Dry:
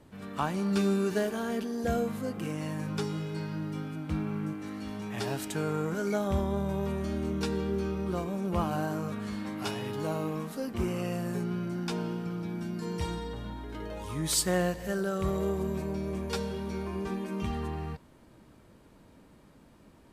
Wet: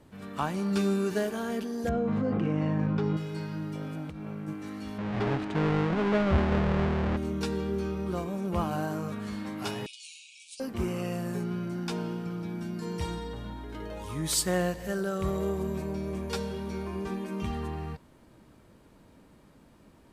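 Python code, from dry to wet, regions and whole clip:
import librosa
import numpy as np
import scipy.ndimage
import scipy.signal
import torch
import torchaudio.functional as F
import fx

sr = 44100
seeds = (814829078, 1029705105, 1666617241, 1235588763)

y = fx.chain(x, sr, fx.spacing_loss(db_at_10k=35),
    fx.env_flatten(amount_pct=100), at=(1.89, 3.17))
y = fx.chain(y, sr, fx.over_compress(threshold_db=-36.0, ratio=-1.0),
    fx.transformer_sat(knee_hz=330.0), at=(3.75, 4.48))
y = fx.chain(y, sr, fx.halfwave_hold(),
    fx.lowpass(hz=2400.0, slope=12), at=(4.98, 7.17))
y = fx.chain(y, sr, fx.brickwall_bandpass(low_hz=2200.0, high_hz=10000.0),
    fx.high_shelf(hz=3000.0, db=6.5), at=(9.86, 10.6))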